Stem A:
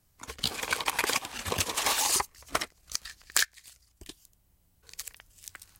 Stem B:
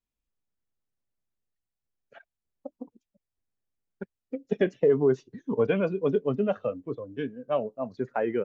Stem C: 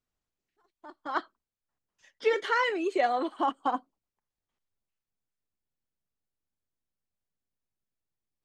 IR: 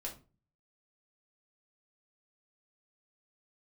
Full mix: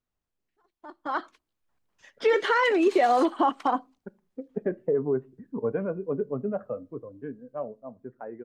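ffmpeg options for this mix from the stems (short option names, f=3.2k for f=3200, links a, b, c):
-filter_complex "[0:a]bandpass=f=3.3k:t=q:w=0.88:csg=0,adelay=1050,volume=-19dB[a];[1:a]lowpass=f=1.7k:w=0.5412,lowpass=f=1.7k:w=1.3066,adelay=50,volume=-12.5dB,asplit=2[b][c];[c]volume=-15.5dB[d];[2:a]alimiter=limit=-22dB:level=0:latency=1:release=59,volume=1dB,asplit=3[e][f][g];[f]volume=-22.5dB[h];[g]apad=whole_len=301894[i];[a][i]sidechaingate=range=-46dB:threshold=-54dB:ratio=16:detection=peak[j];[3:a]atrim=start_sample=2205[k];[d][h]amix=inputs=2:normalize=0[l];[l][k]afir=irnorm=-1:irlink=0[m];[j][b][e][m]amix=inputs=4:normalize=0,highshelf=f=2.8k:g=-7.5,dynaudnorm=f=340:g=7:m=8dB"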